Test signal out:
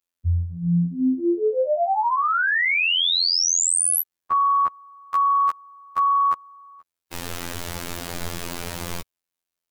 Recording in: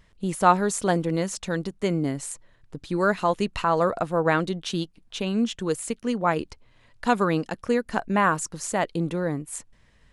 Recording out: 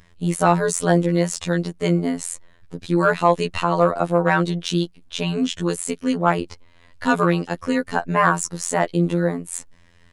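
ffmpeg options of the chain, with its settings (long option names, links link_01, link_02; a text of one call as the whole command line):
ffmpeg -i in.wav -af "afftfilt=real='hypot(re,im)*cos(PI*b)':imag='0':win_size=2048:overlap=0.75,acontrast=68,volume=2dB" out.wav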